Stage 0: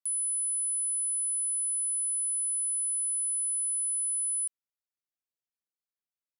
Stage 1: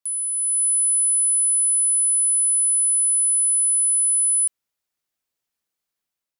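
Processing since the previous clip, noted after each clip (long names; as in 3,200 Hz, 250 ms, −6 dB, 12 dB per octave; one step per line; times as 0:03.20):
automatic gain control gain up to 7 dB
level +4.5 dB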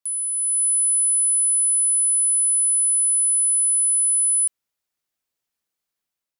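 no processing that can be heard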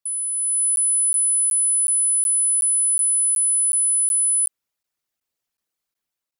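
spectral envelope exaggerated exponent 1.5
regular buffer underruns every 0.37 s, samples 512, zero, from 0:00.76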